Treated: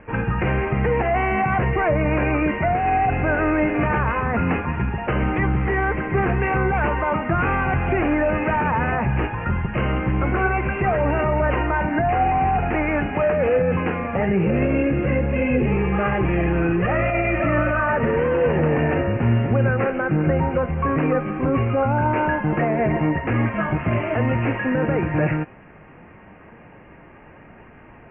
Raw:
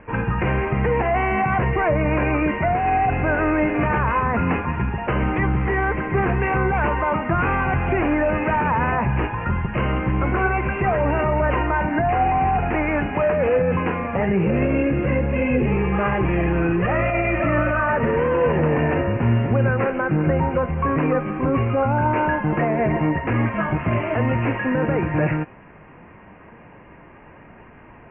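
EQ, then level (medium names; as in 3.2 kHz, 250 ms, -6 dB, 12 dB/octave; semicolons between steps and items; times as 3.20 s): band-stop 1 kHz, Q 11; 0.0 dB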